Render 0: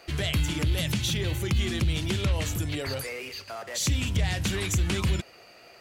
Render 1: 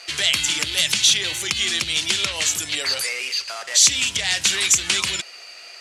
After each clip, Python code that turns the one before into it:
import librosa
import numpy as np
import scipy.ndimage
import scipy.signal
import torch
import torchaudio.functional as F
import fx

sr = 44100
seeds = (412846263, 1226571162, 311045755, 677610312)

y = fx.weighting(x, sr, curve='ITU-R 468')
y = y * librosa.db_to_amplitude(4.5)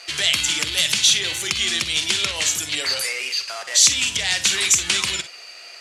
y = fx.room_early_taps(x, sr, ms=(47, 60), db=(-13.5, -15.0))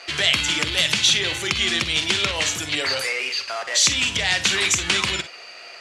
y = fx.lowpass(x, sr, hz=2000.0, slope=6)
y = y * librosa.db_to_amplitude(5.5)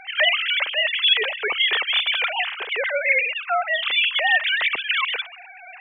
y = fx.sine_speech(x, sr)